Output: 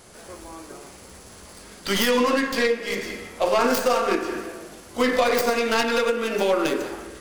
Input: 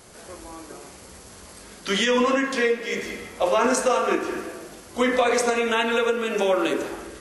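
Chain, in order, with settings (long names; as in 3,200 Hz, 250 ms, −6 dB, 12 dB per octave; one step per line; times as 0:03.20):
stylus tracing distortion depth 0.22 ms
dynamic equaliser 4,700 Hz, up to +8 dB, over −55 dBFS, Q 6.6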